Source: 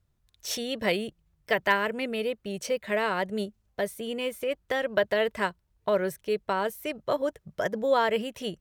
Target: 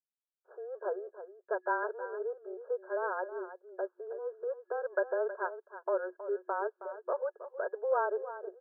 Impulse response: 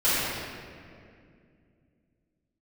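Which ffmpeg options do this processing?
-filter_complex "[0:a]afftfilt=real='re*between(b*sr/4096,380,1700)':imag='im*between(b*sr/4096,380,1700)':win_size=4096:overlap=0.75,agate=range=0.0224:threshold=0.00178:ratio=3:detection=peak,asplit=2[s0][s1];[s1]aecho=0:1:319:0.237[s2];[s0][s2]amix=inputs=2:normalize=0,afreqshift=-21,volume=0.501"

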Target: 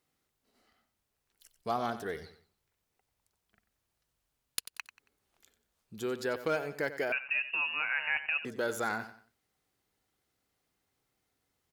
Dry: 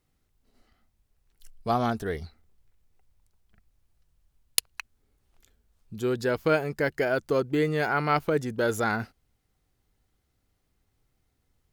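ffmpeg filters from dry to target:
-filter_complex "[0:a]highpass=f=380:p=1,asplit=2[s0][s1];[s1]acompressor=threshold=0.0158:ratio=6,volume=1.12[s2];[s0][s2]amix=inputs=2:normalize=0,asoftclip=type=hard:threshold=0.2,aecho=1:1:92|184|276:0.224|0.0739|0.0244,asettb=1/sr,asplit=3[s3][s4][s5];[s3]atrim=end=7.124[s6];[s4]atrim=start=7.12:end=8.45,asetpts=PTS-STARTPTS,afade=t=in:d=0.004:c=qsin,afade=t=out:st=1.326:d=0.004:c=qsin,lowpass=f=2600:t=q:w=0.5098,lowpass=f=2600:t=q:w=0.6013,lowpass=f=2600:t=q:w=0.9,lowpass=f=2600:t=q:w=2.563,afreqshift=-3000[s7];[s5]atrim=start=8.446[s8];[s6][s7]acrossfade=d=0.004:c1=hsin:c2=qsin[s9];[s9][s8]acrossfade=d=0.004:c1=qsin:c2=hsin,volume=0.422"

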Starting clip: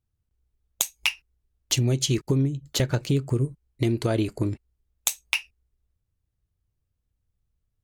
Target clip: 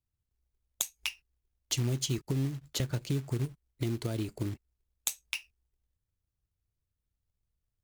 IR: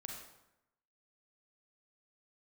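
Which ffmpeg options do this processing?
-filter_complex "[0:a]acrossover=split=300|3000[s0][s1][s2];[s1]acompressor=threshold=0.0251:ratio=5[s3];[s0][s3][s2]amix=inputs=3:normalize=0,acrusher=bits=4:mode=log:mix=0:aa=0.000001,volume=0.422"

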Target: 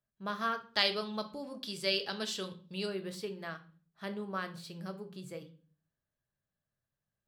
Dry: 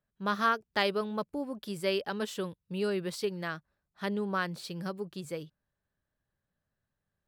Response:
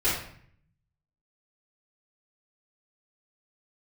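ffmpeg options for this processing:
-filter_complex "[0:a]asettb=1/sr,asplit=3[s0][s1][s2];[s0]atrim=end=0.684[s3];[s1]atrim=start=0.68:end=2.86,asetpts=PTS-STARTPTS,afade=t=in:d=0.004:c=qsin,afade=t=out:st=2.176:d=0.004:c=qsin,equalizer=f=4600:w=0.72:g=14[s4];[s2]atrim=start=2.856[s5];[s3][s4]acrossfade=d=0.004:c1=hsin:c2=qsin[s6];[s6][s5]acrossfade=d=0.004:c1=qsin:c2=hsin,asplit=2[s7][s8];[s8]highpass=f=100:w=0.5412,highpass=f=100:w=1.3066[s9];[1:a]atrim=start_sample=2205,asetrate=70560,aresample=44100[s10];[s9][s10]afir=irnorm=-1:irlink=0,volume=0.211[s11];[s7][s11]amix=inputs=2:normalize=0,volume=0.422"

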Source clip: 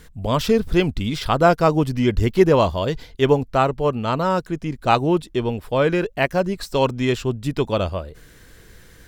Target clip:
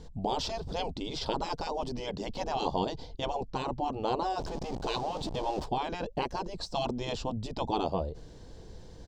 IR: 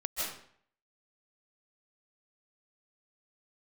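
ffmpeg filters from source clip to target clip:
-filter_complex "[0:a]asettb=1/sr,asplit=3[s0][s1][s2];[s0]atrim=end=4.394[s3];[s1]atrim=start=4.39:end=5.66,asetpts=PTS-STARTPTS,afade=t=in:d=0.004:c=qsin,afade=t=out:st=1.266:d=0.004:c=qsin,aeval=exprs='val(0)+0.5*0.0376*sgn(val(0))':c=same[s4];[s2]atrim=start=5.656[s5];[s3][s4]acrossfade=d=0.004:c1=hsin:c2=qsin[s6];[s6][s5]acrossfade=d=0.004:c1=qsin:c2=hsin,afftfilt=real='re*lt(hypot(re,im),0.282)':imag='im*lt(hypot(re,im),0.282)':win_size=1024:overlap=0.75,firequalizer=gain_entry='entry(350,0);entry(850,4);entry(1300,-14);entry(2000,-17);entry(3100,-9);entry(4700,-3);entry(7800,-12);entry(11000,-28)':delay=0.05:min_phase=1"

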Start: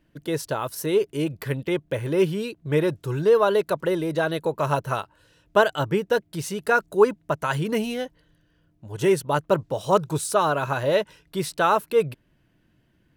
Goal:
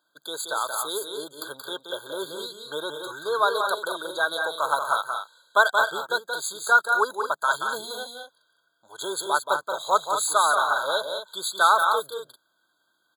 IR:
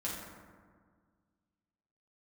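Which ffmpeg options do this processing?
-af "highpass=1300,aecho=1:1:177.8|218.7:0.501|0.355,afftfilt=real='re*eq(mod(floor(b*sr/1024/1600),2),0)':imag='im*eq(mod(floor(b*sr/1024/1600),2),0)':win_size=1024:overlap=0.75,volume=2.37"

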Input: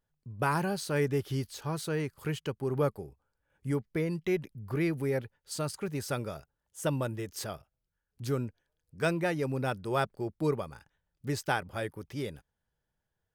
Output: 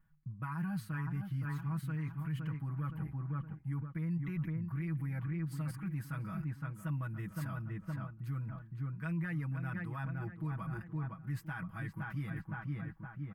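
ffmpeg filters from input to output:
-filter_complex "[0:a]firequalizer=gain_entry='entry(220,0);entry(410,-24);entry(1100,-3);entry(1900,-4);entry(3600,-19);entry(6000,-24);entry(12000,-11)':delay=0.05:min_phase=1,asplit=2[s0][s1];[s1]adelay=515,lowpass=f=2100:p=1,volume=0.376,asplit=2[s2][s3];[s3]adelay=515,lowpass=f=2100:p=1,volume=0.38,asplit=2[s4][s5];[s5]adelay=515,lowpass=f=2100:p=1,volume=0.38,asplit=2[s6][s7];[s7]adelay=515,lowpass=f=2100:p=1,volume=0.38[s8];[s0][s2][s4][s6][s8]amix=inputs=5:normalize=0,areverse,acompressor=threshold=0.00355:ratio=6,areverse,alimiter=level_in=11.9:limit=0.0631:level=0:latency=1:release=29,volume=0.0841,aecho=1:1:6.2:0.97,volume=3.35"

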